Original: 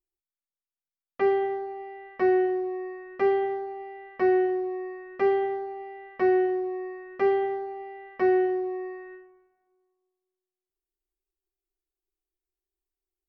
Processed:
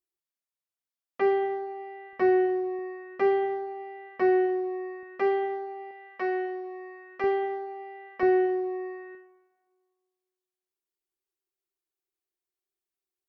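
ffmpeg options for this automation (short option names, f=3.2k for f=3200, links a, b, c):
-af "asetnsamples=n=441:p=0,asendcmd='2.13 highpass f 58;2.79 highpass f 140;5.03 highpass f 340;5.91 highpass f 840;7.24 highpass f 380;8.23 highpass f 110;9.15 highpass f 330',highpass=f=190:p=1"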